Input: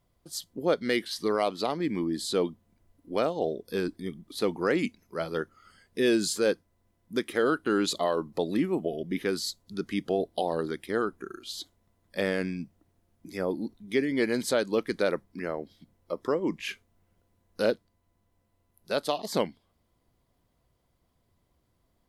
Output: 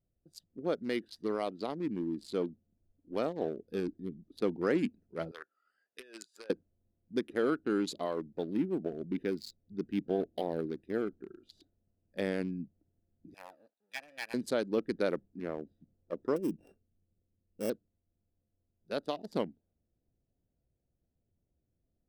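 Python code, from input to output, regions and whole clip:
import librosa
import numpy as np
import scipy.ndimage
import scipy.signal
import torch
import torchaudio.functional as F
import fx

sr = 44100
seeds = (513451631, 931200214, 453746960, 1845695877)

y = fx.chain(x, sr, fx.highpass(hz=1300.0, slope=12),
    fx.over_compress(threshold_db=-39.0, ratio=-1.0), at=(5.31, 6.5))
y = fx.chain(y, sr, fx.peak_eq(hz=1100.0, db=-14.5, octaves=0.3),
    fx.resample_linear(factor=2), at=(8.21, 11.07))
y = fx.chain(y, sr, fx.lower_of_two(delay_ms=1.2),
    fx.highpass(hz=1100.0, slope=12),
    fx.high_shelf(hz=6900.0, db=12.0), at=(13.34, 14.34))
y = fx.chain(y, sr, fx.sample_sort(block=16),
    fx.peak_eq(hz=2500.0, db=-13.0, octaves=2.4), at=(16.36, 17.7))
y = fx.wiener(y, sr, points=41)
y = fx.dynamic_eq(y, sr, hz=270.0, q=0.82, threshold_db=-40.0, ratio=4.0, max_db=5)
y = fx.rider(y, sr, range_db=4, speed_s=2.0)
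y = y * 10.0 ** (-7.5 / 20.0)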